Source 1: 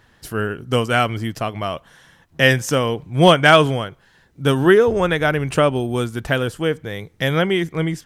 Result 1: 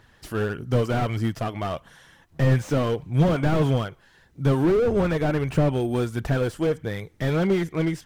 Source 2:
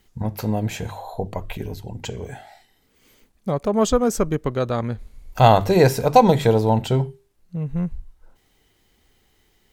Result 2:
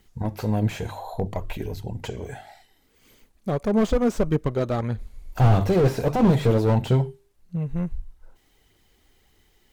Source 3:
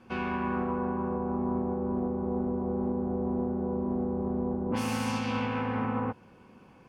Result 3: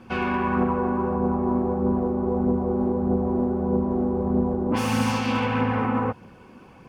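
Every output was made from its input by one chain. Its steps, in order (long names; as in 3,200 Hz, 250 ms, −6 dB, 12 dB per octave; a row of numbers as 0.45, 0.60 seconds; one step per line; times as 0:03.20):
phase shifter 1.6 Hz, delay 3.7 ms, feedback 32%
slew-rate limiting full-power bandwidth 70 Hz
loudness normalisation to −24 LKFS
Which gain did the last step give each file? −2.5, −1.0, +7.0 decibels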